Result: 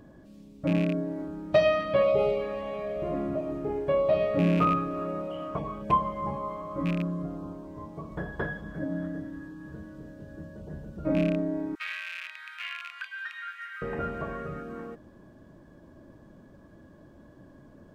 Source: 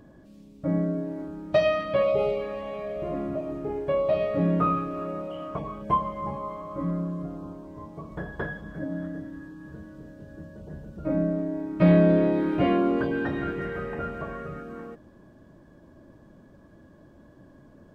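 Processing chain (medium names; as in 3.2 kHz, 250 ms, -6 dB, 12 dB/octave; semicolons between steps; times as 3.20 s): rattle on loud lows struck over -26 dBFS, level -26 dBFS; 11.75–13.82 s: steep high-pass 1.4 kHz 36 dB/octave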